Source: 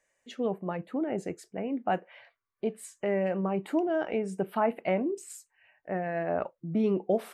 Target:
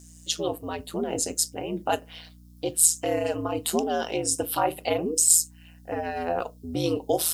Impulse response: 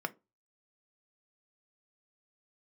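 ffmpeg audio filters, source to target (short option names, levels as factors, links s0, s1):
-filter_complex "[0:a]aexciter=amount=11.8:drive=8.6:freq=3300,aeval=exprs='val(0)*sin(2*PI*82*n/s)':c=same,aeval=exprs='val(0)+0.00355*(sin(2*PI*60*n/s)+sin(2*PI*2*60*n/s)/2+sin(2*PI*3*60*n/s)/3+sin(2*PI*4*60*n/s)/4+sin(2*PI*5*60*n/s)/5)':c=same,asplit=2[s0][s1];[1:a]atrim=start_sample=2205,afade=t=out:st=0.16:d=0.01,atrim=end_sample=7497[s2];[s1][s2]afir=irnorm=-1:irlink=0,volume=0.596[s3];[s0][s3]amix=inputs=2:normalize=0"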